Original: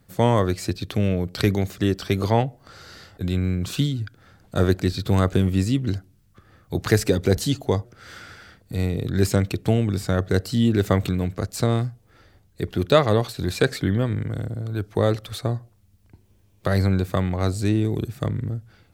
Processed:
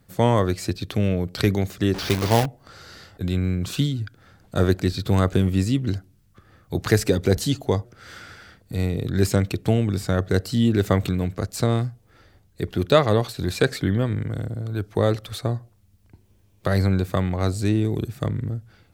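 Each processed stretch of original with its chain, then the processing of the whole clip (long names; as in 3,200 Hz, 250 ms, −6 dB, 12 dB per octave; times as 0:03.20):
0:01.94–0:02.46: linear delta modulator 32 kbit/s, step −23.5 dBFS + log-companded quantiser 4 bits
whole clip: no processing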